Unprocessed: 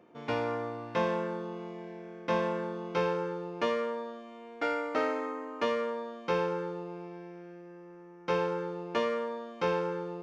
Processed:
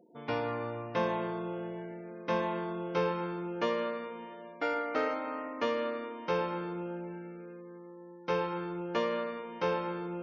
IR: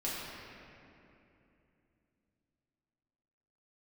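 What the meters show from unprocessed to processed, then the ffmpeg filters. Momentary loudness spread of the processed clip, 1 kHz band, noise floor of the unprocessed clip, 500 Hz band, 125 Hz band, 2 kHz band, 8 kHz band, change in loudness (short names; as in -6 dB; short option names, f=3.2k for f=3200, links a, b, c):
12 LU, -0.5 dB, -50 dBFS, -2.0 dB, 0.0 dB, -1.0 dB, n/a, -1.5 dB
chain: -filter_complex "[0:a]asplit=2[a][b];[1:a]atrim=start_sample=2205,adelay=117[c];[b][c]afir=irnorm=-1:irlink=0,volume=-12.5dB[d];[a][d]amix=inputs=2:normalize=0,afftfilt=real='re*gte(hypot(re,im),0.00282)':imag='im*gte(hypot(re,im),0.00282)':win_size=1024:overlap=0.75,volume=-1.5dB"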